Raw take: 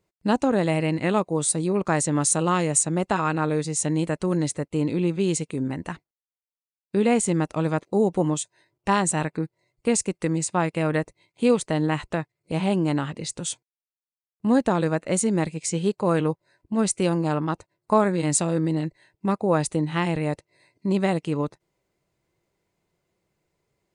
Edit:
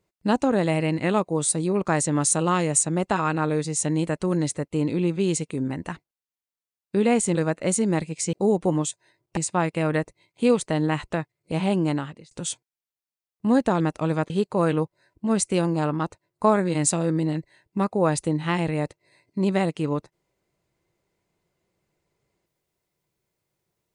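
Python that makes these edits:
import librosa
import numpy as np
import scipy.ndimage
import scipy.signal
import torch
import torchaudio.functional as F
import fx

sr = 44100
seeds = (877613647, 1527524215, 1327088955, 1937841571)

y = fx.edit(x, sr, fx.swap(start_s=7.35, length_s=0.5, other_s=14.8, other_length_s=0.98),
    fx.cut(start_s=8.89, length_s=1.48),
    fx.fade_out_span(start_s=12.88, length_s=0.43), tone=tone)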